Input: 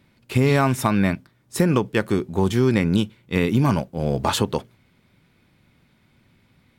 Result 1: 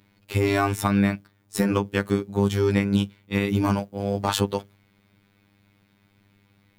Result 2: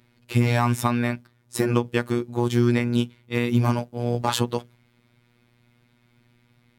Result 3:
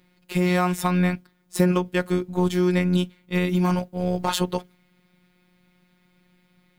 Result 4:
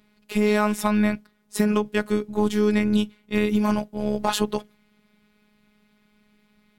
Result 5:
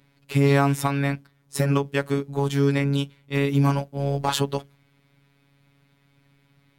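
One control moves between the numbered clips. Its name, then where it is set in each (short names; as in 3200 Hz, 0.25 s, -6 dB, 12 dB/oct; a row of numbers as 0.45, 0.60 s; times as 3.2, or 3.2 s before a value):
robotiser, frequency: 100, 120, 180, 210, 140 Hz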